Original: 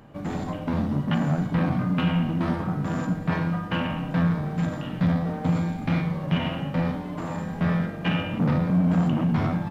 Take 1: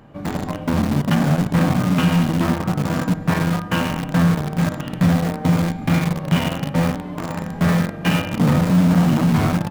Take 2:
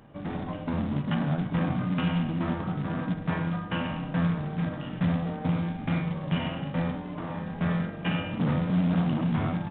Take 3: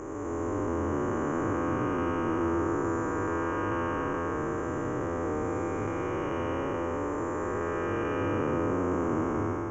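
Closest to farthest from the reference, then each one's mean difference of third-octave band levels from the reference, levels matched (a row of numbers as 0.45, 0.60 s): 2, 1, 3; 2.5, 5.0, 7.5 dB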